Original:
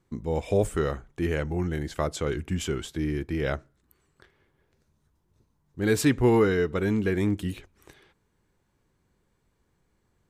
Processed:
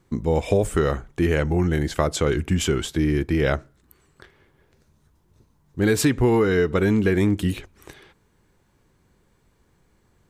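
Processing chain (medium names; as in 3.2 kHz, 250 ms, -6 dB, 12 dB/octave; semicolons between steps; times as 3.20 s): compression 6:1, threshold -24 dBFS, peak gain reduction 8 dB; trim +8.5 dB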